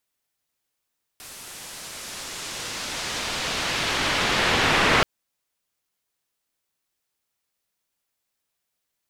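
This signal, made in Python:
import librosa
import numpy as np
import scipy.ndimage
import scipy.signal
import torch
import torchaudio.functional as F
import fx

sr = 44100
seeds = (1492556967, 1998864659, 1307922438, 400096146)

y = fx.riser_noise(sr, seeds[0], length_s=3.83, colour='white', kind='lowpass', start_hz=12000.0, end_hz=2200.0, q=0.79, swell_db=31.0, law='exponential')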